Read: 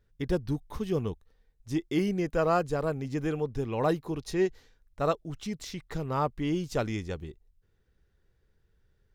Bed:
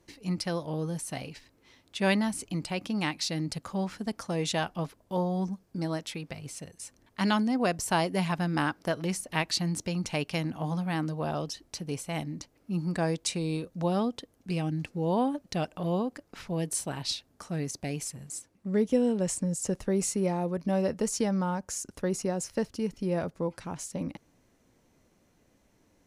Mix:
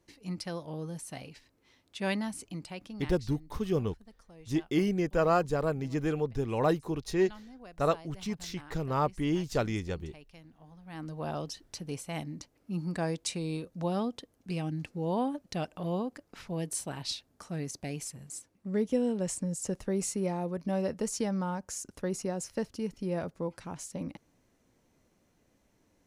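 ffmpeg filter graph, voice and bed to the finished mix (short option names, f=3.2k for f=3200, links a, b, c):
-filter_complex "[0:a]adelay=2800,volume=0dB[a];[1:a]volume=13.5dB,afade=t=out:st=2.41:d=0.88:silence=0.141254,afade=t=in:st=10.82:d=0.47:silence=0.105925[b];[a][b]amix=inputs=2:normalize=0"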